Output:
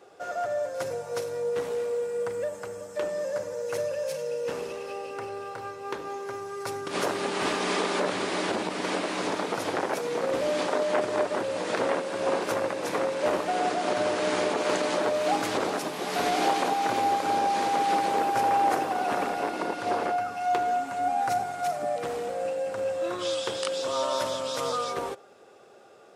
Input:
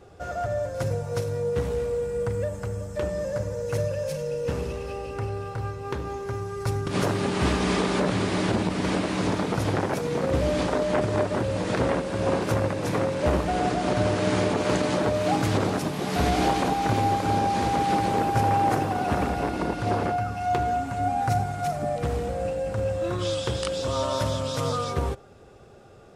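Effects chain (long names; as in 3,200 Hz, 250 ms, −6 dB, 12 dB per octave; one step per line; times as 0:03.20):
high-pass filter 380 Hz 12 dB per octave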